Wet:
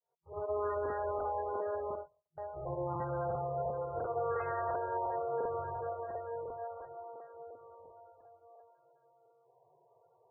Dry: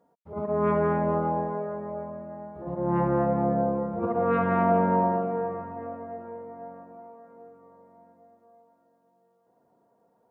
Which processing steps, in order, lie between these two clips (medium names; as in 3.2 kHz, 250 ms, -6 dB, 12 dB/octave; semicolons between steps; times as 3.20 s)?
fade-in on the opening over 0.72 s; 1.93–2.38 s: gate -32 dBFS, range -57 dB; compression 8:1, threshold -30 dBFS, peak gain reduction 12 dB; FFT band-reject 160–350 Hz; crackling interface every 0.35 s, samples 2048, repeat, from 0.81 s; MP3 8 kbps 22.05 kHz